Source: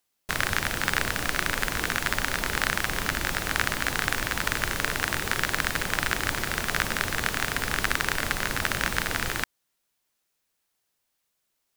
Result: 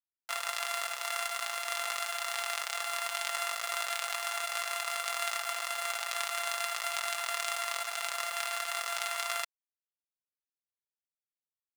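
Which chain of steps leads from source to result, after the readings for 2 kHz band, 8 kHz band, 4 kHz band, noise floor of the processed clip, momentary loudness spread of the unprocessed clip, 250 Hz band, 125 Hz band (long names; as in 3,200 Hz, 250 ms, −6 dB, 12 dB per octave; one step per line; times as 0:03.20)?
−9.5 dB, −4.0 dB, −5.0 dB, below −85 dBFS, 2 LU, below −35 dB, below −40 dB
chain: samples sorted by size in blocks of 64 samples
low-pass filter 9,500 Hz 12 dB per octave
high-shelf EQ 5,200 Hz +3.5 dB
compressor whose output falls as the input rises −31 dBFS, ratio −1
bit-depth reduction 6 bits, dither none
high-pass filter 850 Hz 24 dB per octave
comb filter 5.9 ms
level −3.5 dB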